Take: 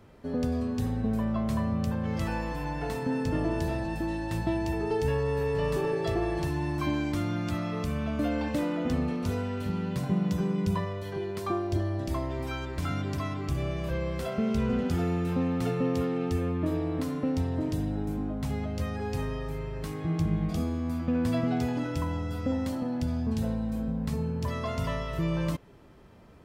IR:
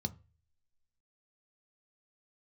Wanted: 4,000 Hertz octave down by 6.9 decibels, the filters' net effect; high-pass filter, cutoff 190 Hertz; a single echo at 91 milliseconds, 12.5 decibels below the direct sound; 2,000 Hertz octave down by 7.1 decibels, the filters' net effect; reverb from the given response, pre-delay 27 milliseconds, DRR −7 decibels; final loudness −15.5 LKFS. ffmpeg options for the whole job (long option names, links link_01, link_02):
-filter_complex "[0:a]highpass=190,equalizer=frequency=2000:width_type=o:gain=-7.5,equalizer=frequency=4000:width_type=o:gain=-6.5,aecho=1:1:91:0.237,asplit=2[link_01][link_02];[1:a]atrim=start_sample=2205,adelay=27[link_03];[link_02][link_03]afir=irnorm=-1:irlink=0,volume=7dB[link_04];[link_01][link_04]amix=inputs=2:normalize=0,volume=1.5dB"